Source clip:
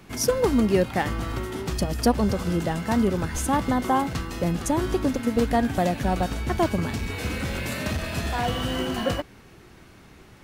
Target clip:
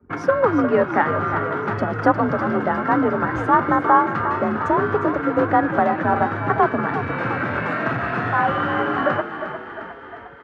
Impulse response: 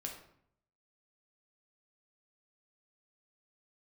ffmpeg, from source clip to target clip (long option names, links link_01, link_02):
-filter_complex "[0:a]anlmdn=0.398,lowshelf=frequency=240:gain=-6.5,asplit=2[link_01][link_02];[link_02]acompressor=threshold=-38dB:ratio=5,volume=1dB[link_03];[link_01][link_03]amix=inputs=2:normalize=0,afreqshift=46,lowpass=frequency=1400:width_type=q:width=3.3,asplit=2[link_04][link_05];[link_05]asplit=7[link_06][link_07][link_08][link_09][link_10][link_11][link_12];[link_06]adelay=355,afreqshift=36,volume=-10dB[link_13];[link_07]adelay=710,afreqshift=72,volume=-14.3dB[link_14];[link_08]adelay=1065,afreqshift=108,volume=-18.6dB[link_15];[link_09]adelay=1420,afreqshift=144,volume=-22.9dB[link_16];[link_10]adelay=1775,afreqshift=180,volume=-27.2dB[link_17];[link_11]adelay=2130,afreqshift=216,volume=-31.5dB[link_18];[link_12]adelay=2485,afreqshift=252,volume=-35.8dB[link_19];[link_13][link_14][link_15][link_16][link_17][link_18][link_19]amix=inputs=7:normalize=0[link_20];[link_04][link_20]amix=inputs=2:normalize=0,volume=2.5dB"